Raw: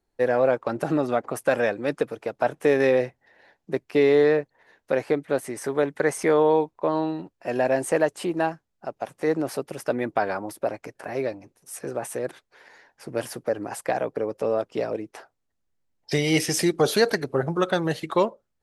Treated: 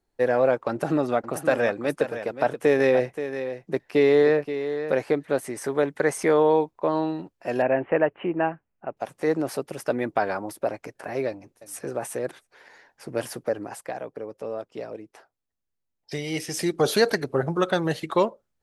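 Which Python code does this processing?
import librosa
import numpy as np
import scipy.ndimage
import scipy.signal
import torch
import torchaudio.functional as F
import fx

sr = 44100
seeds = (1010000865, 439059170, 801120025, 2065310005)

y = fx.echo_single(x, sr, ms=527, db=-10.5, at=(0.71, 5.34))
y = fx.steep_lowpass(y, sr, hz=2900.0, slope=72, at=(7.62, 8.97))
y = fx.echo_throw(y, sr, start_s=11.27, length_s=0.52, ms=340, feedback_pct=15, wet_db=-16.5)
y = fx.edit(y, sr, fx.fade_down_up(start_s=13.45, length_s=3.46, db=-8.0, fade_s=0.45), tone=tone)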